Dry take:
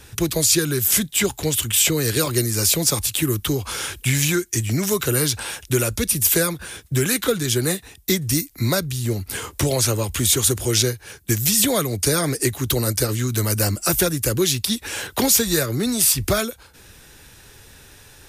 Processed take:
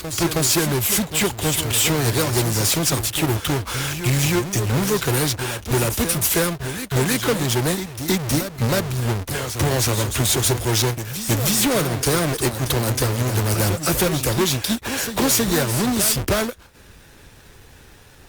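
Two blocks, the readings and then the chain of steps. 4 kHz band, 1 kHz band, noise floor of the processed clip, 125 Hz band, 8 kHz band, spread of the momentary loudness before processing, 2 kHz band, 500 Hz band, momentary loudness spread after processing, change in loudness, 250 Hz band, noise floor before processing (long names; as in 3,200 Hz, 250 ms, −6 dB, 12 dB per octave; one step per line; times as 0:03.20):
0.0 dB, +5.0 dB, −47 dBFS, +2.0 dB, −2.0 dB, 8 LU, +1.5 dB, +0.5 dB, 6 LU, 0.0 dB, +1.0 dB, −48 dBFS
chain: each half-wave held at its own peak
leveller curve on the samples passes 1
backwards echo 318 ms −9 dB
level −7 dB
Opus 48 kbit/s 48,000 Hz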